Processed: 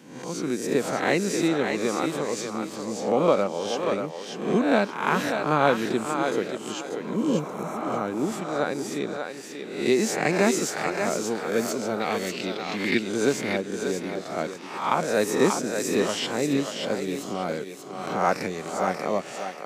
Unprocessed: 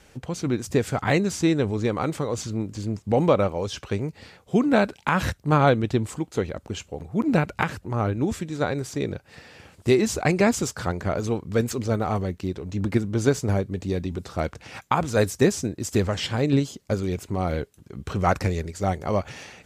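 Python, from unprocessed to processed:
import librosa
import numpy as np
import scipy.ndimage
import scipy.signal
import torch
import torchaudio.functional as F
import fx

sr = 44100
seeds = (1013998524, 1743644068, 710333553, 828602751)

y = fx.spec_swells(x, sr, rise_s=0.63)
y = scipy.signal.sosfilt(scipy.signal.butter(4, 180.0, 'highpass', fs=sr, output='sos'), y)
y = fx.spec_repair(y, sr, seeds[0], start_s=7.14, length_s=0.84, low_hz=560.0, high_hz=5400.0, source='both')
y = fx.band_shelf(y, sr, hz=3000.0, db=12.5, octaves=1.7, at=(12.0, 12.99))
y = fx.echo_thinned(y, sr, ms=586, feedback_pct=27, hz=420.0, wet_db=-4.5)
y = y * 10.0 ** (-3.0 / 20.0)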